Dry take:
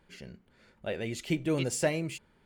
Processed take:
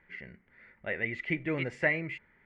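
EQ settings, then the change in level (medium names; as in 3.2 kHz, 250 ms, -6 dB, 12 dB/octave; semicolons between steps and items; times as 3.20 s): resonant low-pass 2 kHz, resonance Q 9.1; -4.0 dB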